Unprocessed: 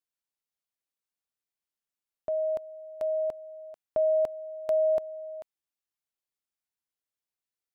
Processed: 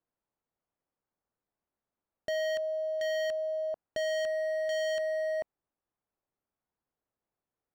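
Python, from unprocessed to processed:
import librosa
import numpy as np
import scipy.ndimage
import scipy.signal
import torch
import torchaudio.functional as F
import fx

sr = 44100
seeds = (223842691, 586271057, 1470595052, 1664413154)

p1 = scipy.signal.sosfilt(scipy.signal.butter(2, 1000.0, 'lowpass', fs=sr, output='sos'), x)
p2 = fx.over_compress(p1, sr, threshold_db=-31.0, ratio=-1.0)
p3 = p1 + (p2 * librosa.db_to_amplitude(-1.0))
p4 = np.clip(p3, -10.0 ** (-34.0 / 20.0), 10.0 ** (-34.0 / 20.0))
y = p4 * librosa.db_to_amplitude(4.0)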